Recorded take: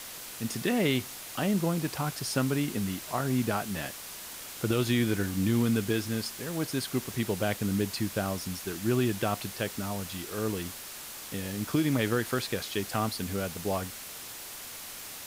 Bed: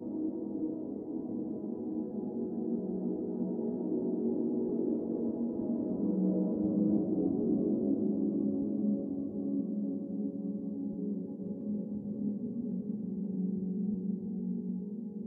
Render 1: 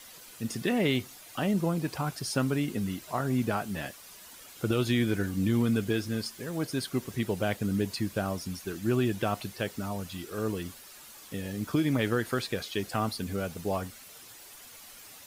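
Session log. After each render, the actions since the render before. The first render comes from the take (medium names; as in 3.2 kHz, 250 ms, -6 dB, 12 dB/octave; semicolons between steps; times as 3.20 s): noise reduction 10 dB, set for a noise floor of -43 dBFS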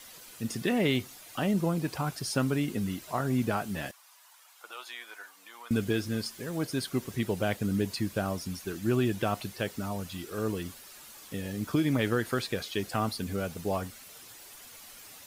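3.91–5.71 s: ladder high-pass 760 Hz, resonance 45%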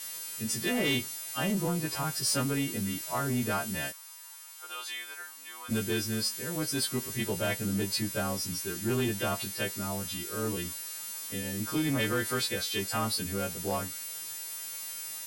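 partials quantised in pitch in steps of 2 st; saturation -21.5 dBFS, distortion -18 dB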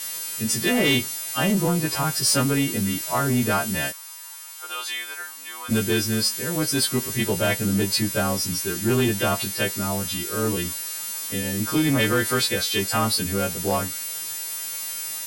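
trim +8.5 dB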